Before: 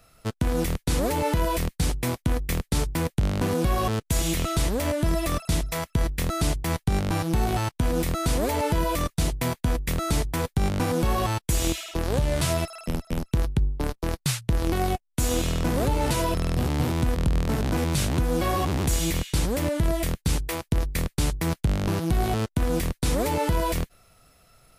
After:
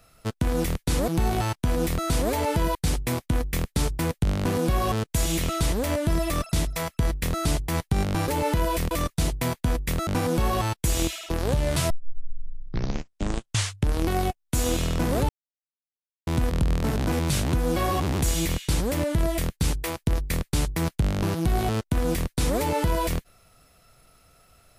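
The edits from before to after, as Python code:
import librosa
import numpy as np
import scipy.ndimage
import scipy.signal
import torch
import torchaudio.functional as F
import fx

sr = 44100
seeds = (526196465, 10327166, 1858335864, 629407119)

y = fx.edit(x, sr, fx.swap(start_s=1.08, length_s=0.63, other_s=7.24, other_length_s=1.67),
    fx.cut(start_s=10.07, length_s=0.65),
    fx.tape_start(start_s=12.55, length_s=2.17),
    fx.silence(start_s=15.94, length_s=0.98), tone=tone)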